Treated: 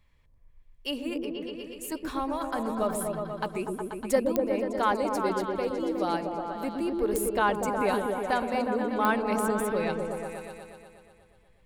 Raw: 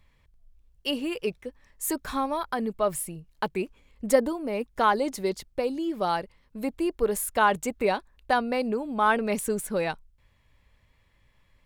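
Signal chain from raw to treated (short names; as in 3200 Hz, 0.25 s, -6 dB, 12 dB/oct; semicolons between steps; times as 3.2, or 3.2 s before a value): 1.15–1.92 compressor 2:1, threshold -37 dBFS, peak gain reduction 8 dB; repeats that get brighter 0.121 s, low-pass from 400 Hz, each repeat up 1 oct, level 0 dB; pops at 4.36/7.16/9.05, -9 dBFS; gain -4 dB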